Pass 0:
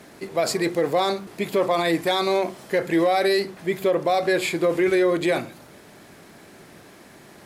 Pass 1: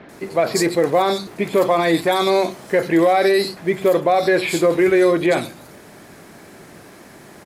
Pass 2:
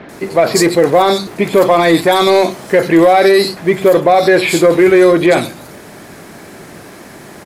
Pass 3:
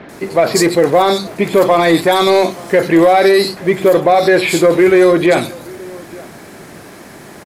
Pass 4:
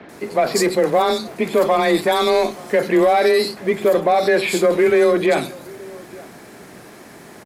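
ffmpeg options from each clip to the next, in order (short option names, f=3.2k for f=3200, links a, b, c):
-filter_complex "[0:a]acrossover=split=3400[a][b];[b]adelay=90[c];[a][c]amix=inputs=2:normalize=0,volume=5dB"
-af "acontrast=52,volume=2dB"
-filter_complex "[0:a]asplit=2[a][b];[b]adelay=874.6,volume=-22dB,highshelf=f=4k:g=-19.7[c];[a][c]amix=inputs=2:normalize=0,volume=-1dB"
-af "afreqshift=20,volume=-5.5dB"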